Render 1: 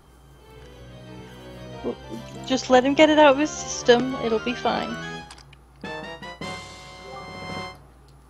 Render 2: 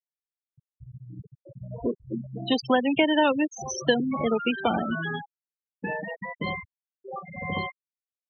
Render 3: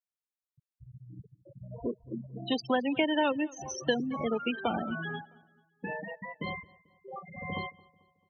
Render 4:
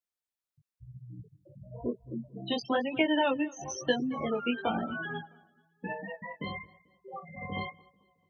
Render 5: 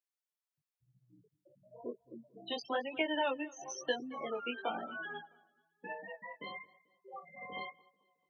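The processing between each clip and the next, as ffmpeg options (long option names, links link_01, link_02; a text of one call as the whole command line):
ffmpeg -i in.wav -filter_complex "[0:a]acrossover=split=310|920|5600[link_01][link_02][link_03][link_04];[link_01]acompressor=threshold=-30dB:ratio=4[link_05];[link_02]acompressor=threshold=-35dB:ratio=4[link_06];[link_03]acompressor=threshold=-30dB:ratio=4[link_07];[link_04]acompressor=threshold=-46dB:ratio=4[link_08];[link_05][link_06][link_07][link_08]amix=inputs=4:normalize=0,afftfilt=real='re*gte(hypot(re,im),0.0631)':imag='im*gte(hypot(re,im),0.0631)':win_size=1024:overlap=0.75,volume=5dB" out.wav
ffmpeg -i in.wav -filter_complex "[0:a]asplit=2[link_01][link_02];[link_02]adelay=220,lowpass=frequency=4100:poles=1,volume=-23dB,asplit=2[link_03][link_04];[link_04]adelay=220,lowpass=frequency=4100:poles=1,volume=0.47,asplit=2[link_05][link_06];[link_06]adelay=220,lowpass=frequency=4100:poles=1,volume=0.47[link_07];[link_01][link_03][link_05][link_07]amix=inputs=4:normalize=0,volume=-6dB" out.wav
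ffmpeg -i in.wav -af "flanger=delay=15.5:depth=5.3:speed=1,volume=3dB" out.wav
ffmpeg -i in.wav -af "highpass=380,volume=-5dB" out.wav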